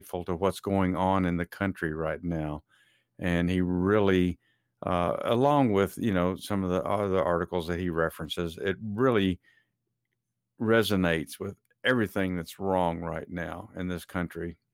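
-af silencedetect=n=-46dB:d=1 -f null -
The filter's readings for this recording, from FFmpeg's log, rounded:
silence_start: 9.36
silence_end: 10.60 | silence_duration: 1.24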